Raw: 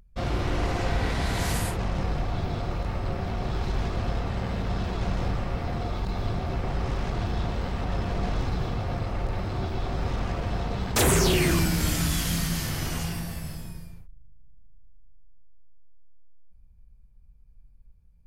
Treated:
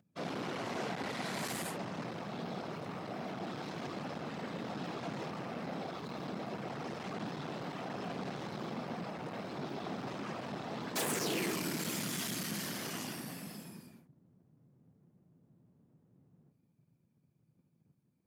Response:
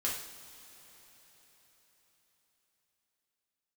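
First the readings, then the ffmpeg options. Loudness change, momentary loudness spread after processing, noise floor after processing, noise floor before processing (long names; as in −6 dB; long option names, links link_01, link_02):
−11.0 dB, 6 LU, −74 dBFS, −53 dBFS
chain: -af "afftfilt=real='hypot(re,im)*cos(2*PI*random(0))':imag='hypot(re,im)*sin(2*PI*random(1))':win_size=512:overlap=0.75,asoftclip=type=tanh:threshold=-31.5dB,highpass=frequency=170:width=0.5412,highpass=frequency=170:width=1.3066,volume=1dB"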